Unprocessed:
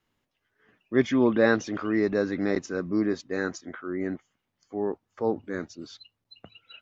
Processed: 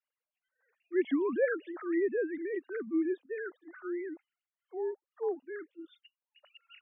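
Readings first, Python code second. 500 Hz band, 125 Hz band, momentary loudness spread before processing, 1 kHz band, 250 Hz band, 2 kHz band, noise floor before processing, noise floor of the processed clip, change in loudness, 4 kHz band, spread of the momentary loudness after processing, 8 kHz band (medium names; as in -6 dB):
-5.5 dB, under -25 dB, 16 LU, -11.0 dB, -8.0 dB, -9.0 dB, -81 dBFS, under -85 dBFS, -7.0 dB, under -15 dB, 15 LU, no reading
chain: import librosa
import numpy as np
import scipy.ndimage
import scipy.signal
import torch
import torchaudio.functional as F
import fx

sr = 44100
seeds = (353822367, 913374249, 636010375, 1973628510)

y = fx.sine_speech(x, sr)
y = fx.spec_topn(y, sr, count=64)
y = y * 10.0 ** (-7.0 / 20.0)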